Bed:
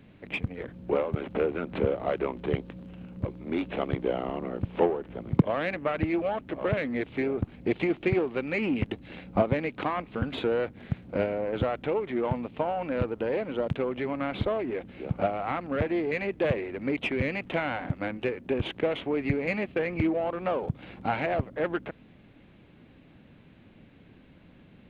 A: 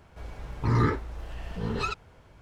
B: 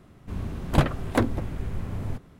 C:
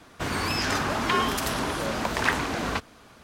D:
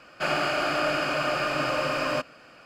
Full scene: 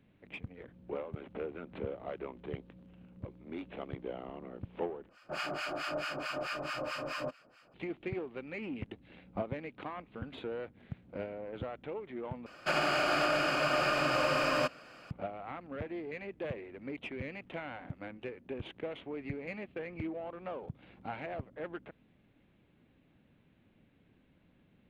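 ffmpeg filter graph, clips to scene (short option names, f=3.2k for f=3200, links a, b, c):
-filter_complex "[4:a]asplit=2[a][b];[0:a]volume=-12.5dB[c];[a]acrossover=split=950[d][e];[d]aeval=exprs='val(0)*(1-1/2+1/2*cos(2*PI*4.6*n/s))':c=same[f];[e]aeval=exprs='val(0)*(1-1/2-1/2*cos(2*PI*4.6*n/s))':c=same[g];[f][g]amix=inputs=2:normalize=0[h];[b]alimiter=limit=-17dB:level=0:latency=1:release=98[i];[c]asplit=3[j][k][l];[j]atrim=end=5.094[m];[h]atrim=end=2.65,asetpts=PTS-STARTPTS,volume=-6.5dB[n];[k]atrim=start=7.736:end=12.464[o];[i]atrim=end=2.65,asetpts=PTS-STARTPTS,volume=-2.5dB[p];[l]atrim=start=15.106[q];[m][n]acrossfade=d=0.004:c1=hsin:c2=hsin[r];[r][o]acrossfade=d=0.004:c1=hsin:c2=hsin[s];[s][p]acrossfade=d=0.004:c1=hsin:c2=hsin[t];[t][q]acrossfade=d=0.004:c1=hsin:c2=hsin"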